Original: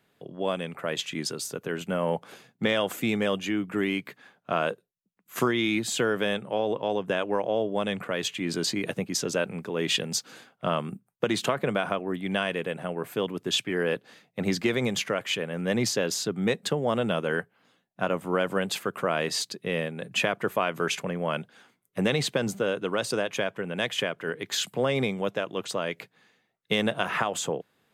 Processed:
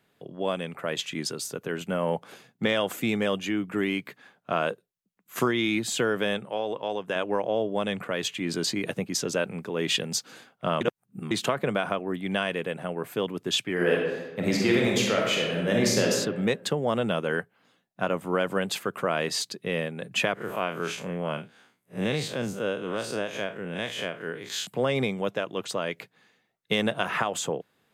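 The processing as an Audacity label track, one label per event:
6.450000	7.160000	low shelf 400 Hz -8 dB
10.810000	11.310000	reverse
13.720000	16.090000	reverb throw, RT60 1.2 s, DRR -1.5 dB
20.340000	24.670000	time blur width 91 ms

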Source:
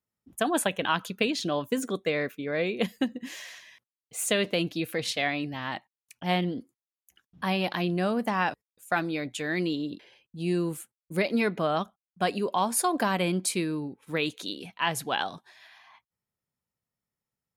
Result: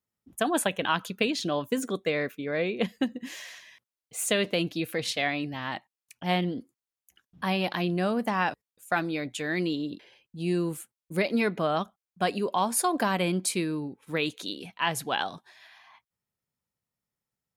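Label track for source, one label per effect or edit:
2.580000	3.030000	high shelf 7700 Hz -11.5 dB

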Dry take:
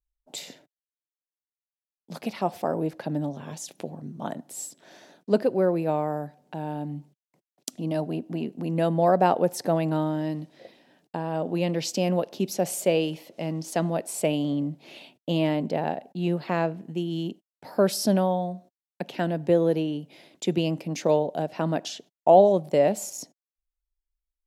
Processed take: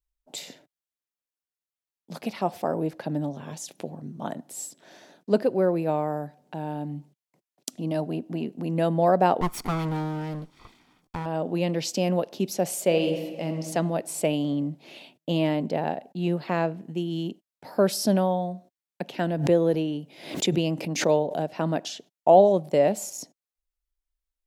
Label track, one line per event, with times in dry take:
9.410000	11.260000	minimum comb delay 0.88 ms
12.840000	13.560000	reverb throw, RT60 1.6 s, DRR 6 dB
19.280000	21.520000	backwards sustainer at most 92 dB/s

